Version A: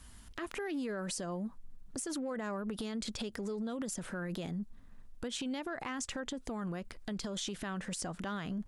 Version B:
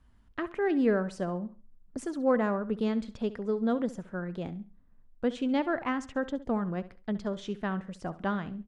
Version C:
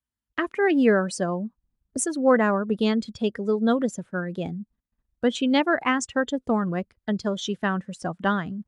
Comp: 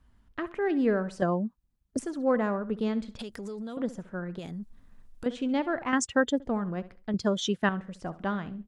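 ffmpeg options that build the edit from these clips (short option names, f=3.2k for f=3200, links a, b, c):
-filter_complex "[2:a]asplit=3[a][b][c];[0:a]asplit=2[d][e];[1:a]asplit=6[f][g][h][i][j][k];[f]atrim=end=1.222[l];[a]atrim=start=1.218:end=1.992[m];[g]atrim=start=1.988:end=3.192[n];[d]atrim=start=3.188:end=3.772[o];[h]atrim=start=3.768:end=4.392[p];[e]atrim=start=4.388:end=5.262[q];[i]atrim=start=5.258:end=5.932[r];[b]atrim=start=5.928:end=6.402[s];[j]atrim=start=6.398:end=7.142[t];[c]atrim=start=7.138:end=7.692[u];[k]atrim=start=7.688[v];[l][m]acrossfade=d=0.004:c1=hsin:c2=hsin[w];[w][n]acrossfade=d=0.004:c1=hsin:c2=hsin[x];[x][o]acrossfade=d=0.004:c1=hsin:c2=hsin[y];[y][p]acrossfade=d=0.004:c1=hsin:c2=hsin[z];[z][q]acrossfade=d=0.004:c1=hsin:c2=hsin[aa];[aa][r]acrossfade=d=0.004:c1=hsin:c2=hsin[ab];[ab][s]acrossfade=d=0.004:c1=hsin:c2=hsin[ac];[ac][t]acrossfade=d=0.004:c1=hsin:c2=hsin[ad];[ad][u]acrossfade=d=0.004:c1=hsin:c2=hsin[ae];[ae][v]acrossfade=d=0.004:c1=hsin:c2=hsin"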